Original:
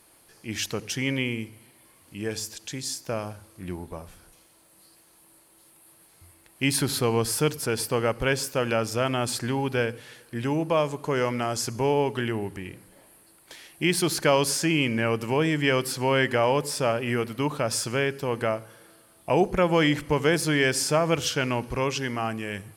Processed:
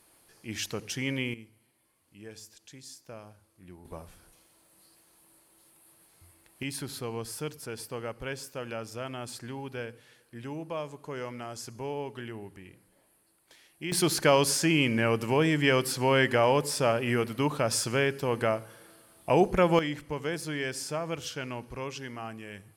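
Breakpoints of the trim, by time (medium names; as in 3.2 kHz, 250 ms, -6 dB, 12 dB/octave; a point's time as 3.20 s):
-4.5 dB
from 1.34 s -15 dB
from 3.85 s -4.5 dB
from 6.63 s -12 dB
from 13.92 s -1 dB
from 19.79 s -10.5 dB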